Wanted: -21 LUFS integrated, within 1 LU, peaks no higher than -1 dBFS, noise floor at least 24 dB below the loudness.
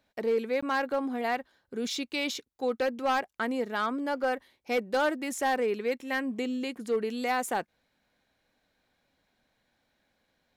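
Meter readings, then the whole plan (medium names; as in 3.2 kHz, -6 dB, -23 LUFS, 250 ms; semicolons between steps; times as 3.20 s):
clipped samples 0.7%; clipping level -21.0 dBFS; dropouts 1; longest dropout 15 ms; loudness -30.5 LUFS; peak level -21.0 dBFS; loudness target -21.0 LUFS
-> clip repair -21 dBFS; interpolate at 0.61 s, 15 ms; trim +9.5 dB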